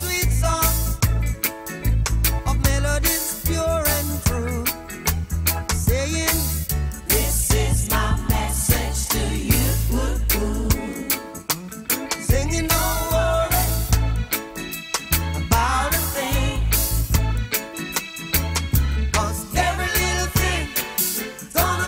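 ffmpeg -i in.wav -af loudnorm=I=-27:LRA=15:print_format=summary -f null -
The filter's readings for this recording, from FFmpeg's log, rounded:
Input Integrated:    -21.4 LUFS
Input True Peak:      -3.8 dBTP
Input LRA:             1.5 LU
Input Threshold:     -31.4 LUFS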